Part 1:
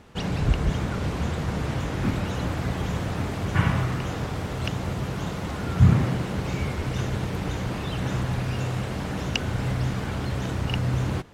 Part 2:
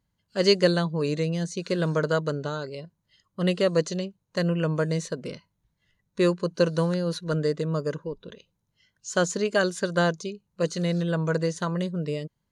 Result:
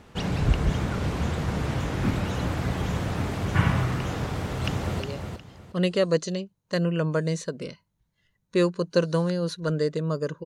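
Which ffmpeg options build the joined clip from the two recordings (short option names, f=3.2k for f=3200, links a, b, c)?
-filter_complex "[0:a]apad=whole_dur=10.45,atrim=end=10.45,atrim=end=5.002[a];[1:a]atrim=start=2.638:end=8.09[b];[a][b]acrossfade=d=0.004:c1=hsin:c2=hsin,asplit=2[c][d];[d]afade=t=in:st=4.28:d=0.01,afade=t=out:st=5:d=0.01,aecho=0:1:360|720|1080:0.501187|0.125297|0.0313242[e];[c][e]amix=inputs=2:normalize=0"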